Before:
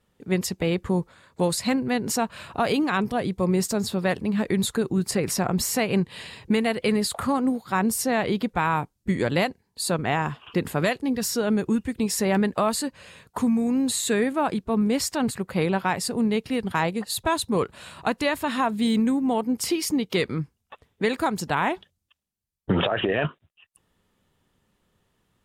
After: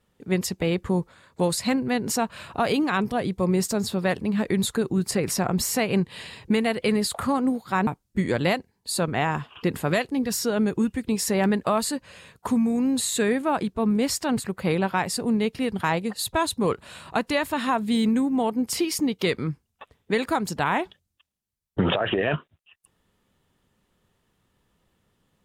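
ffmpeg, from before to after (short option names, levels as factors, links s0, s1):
-filter_complex "[0:a]asplit=2[s0][s1];[s0]atrim=end=7.872[s2];[s1]atrim=start=8.778[s3];[s2][s3]acrossfade=d=0.004:c1=hsin:c2=hsin"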